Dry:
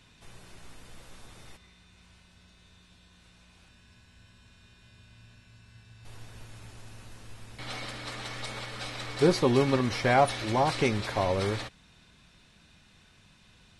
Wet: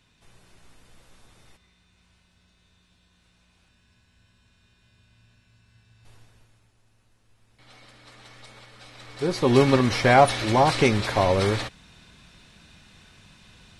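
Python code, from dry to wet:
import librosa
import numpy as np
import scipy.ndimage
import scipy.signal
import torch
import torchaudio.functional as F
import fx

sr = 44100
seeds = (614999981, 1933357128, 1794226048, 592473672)

y = fx.gain(x, sr, db=fx.line((6.09, -5.0), (6.72, -17.0), (7.23, -17.0), (8.29, -10.0), (8.85, -10.0), (9.28, -3.5), (9.56, 6.5)))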